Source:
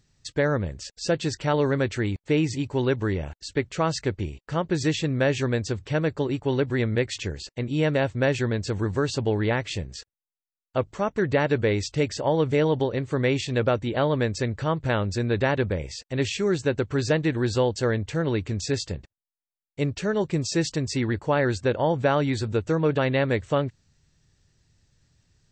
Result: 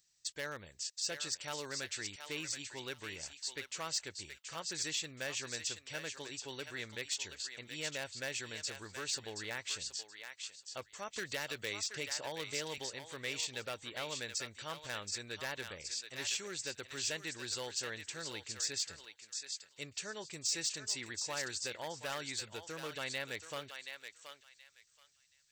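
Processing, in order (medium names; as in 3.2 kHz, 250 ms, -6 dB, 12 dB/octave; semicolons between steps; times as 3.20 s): hard clipper -15 dBFS, distortion -24 dB; pre-emphasis filter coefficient 0.97; thinning echo 726 ms, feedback 22%, high-pass 1.1 kHz, level -6 dB; saturation -25.5 dBFS, distortion -23 dB; 11.13–12.78 s: three bands compressed up and down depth 70%; trim +1 dB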